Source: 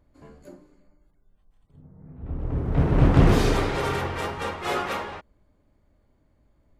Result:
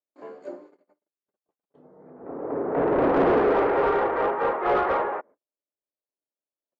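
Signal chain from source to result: low-pass 7.9 kHz 24 dB/octave, from 2.10 s 1.9 kHz; gate -54 dBFS, range -40 dB; high-pass 300 Hz 12 dB/octave; peaking EQ 440 Hz +8.5 dB 1.9 oct; overdrive pedal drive 20 dB, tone 1.3 kHz, clips at -6 dBFS; trim -5.5 dB

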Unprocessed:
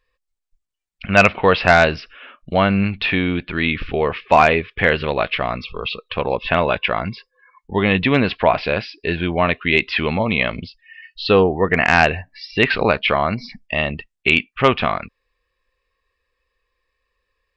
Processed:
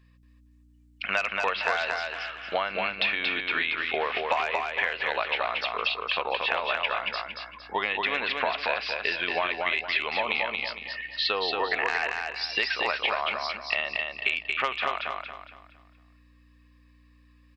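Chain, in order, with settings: high-pass 810 Hz 12 dB/octave; compression 12:1, threshold -28 dBFS, peak gain reduction 20 dB; hum 60 Hz, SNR 27 dB; on a send: feedback delay 230 ms, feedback 35%, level -3.5 dB; on the sum: trim +4 dB

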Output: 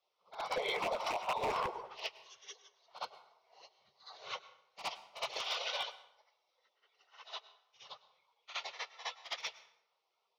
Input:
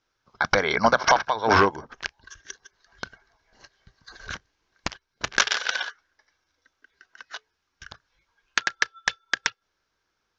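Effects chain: phase randomisation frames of 50 ms; high-pass 130 Hz 24 dB/octave; three-band isolator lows -22 dB, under 380 Hz, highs -21 dB, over 4.2 kHz; compression 16:1, threshold -25 dBFS, peak gain reduction 12.5 dB; peak limiter -22 dBFS, peak gain reduction 7 dB; treble shelf 5.6 kHz -5 dB; static phaser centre 670 Hz, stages 4; wavefolder -30.5 dBFS; LFO notch sine 3.6 Hz 280–1600 Hz; reverse echo 64 ms -11.5 dB; plate-style reverb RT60 0.78 s, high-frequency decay 0.7×, pre-delay 90 ms, DRR 15.5 dB; trim +3.5 dB

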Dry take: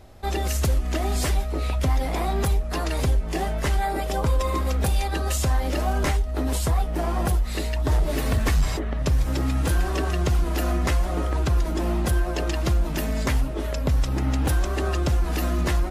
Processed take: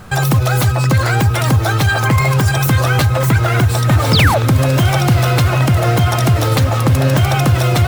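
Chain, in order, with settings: in parallel at +1.5 dB: peak limiter -21 dBFS, peak gain reduction 8 dB; on the sum: painted sound fall, 8.34–8.85 s, 250–2700 Hz -20 dBFS; wide varispeed 2.02×; echo that smears into a reverb 1076 ms, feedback 75%, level -15 dB; trim +5 dB

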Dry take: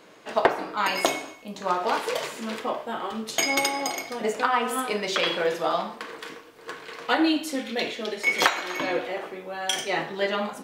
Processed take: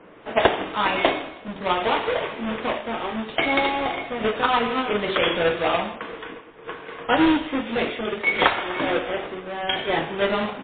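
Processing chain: square wave that keeps the level; level-controlled noise filter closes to 2.3 kHz, open at -15 dBFS; feedback delay 156 ms, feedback 45%, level -19 dB; MP3 16 kbps 8 kHz

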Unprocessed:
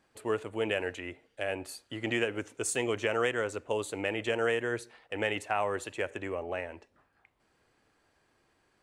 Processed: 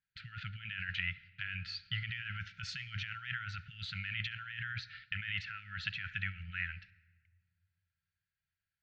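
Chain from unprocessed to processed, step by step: gate -58 dBFS, range -27 dB; steep low-pass 4.8 kHz 48 dB/octave; compressor with a negative ratio -37 dBFS, ratio -1; brick-wall FIR band-stop 190–1300 Hz; on a send: reverberation RT60 1.6 s, pre-delay 70 ms, DRR 21 dB; on the sum: trim +2.5 dB

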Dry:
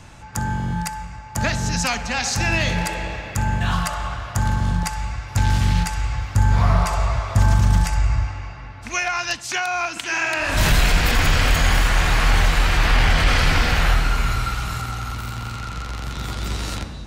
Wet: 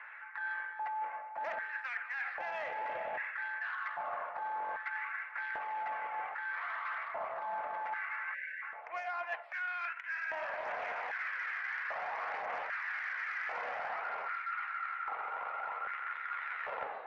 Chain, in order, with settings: elliptic band-pass 440–2100 Hz, stop band 50 dB; in parallel at +1 dB: peak limiter -20.5 dBFS, peak gain reduction 8 dB; on the sum: saturation -12.5 dBFS, distortion -22 dB; LFO high-pass square 0.63 Hz 660–1600 Hz; phaser 0.56 Hz, delay 2.6 ms, feedback 28%; spectral selection erased 8.34–8.62 s, 610–1500 Hz; reverse; compression 12:1, threshold -28 dBFS, peak gain reduction 16.5 dB; reverse; loudspeaker Doppler distortion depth 0.24 ms; trim -7.5 dB

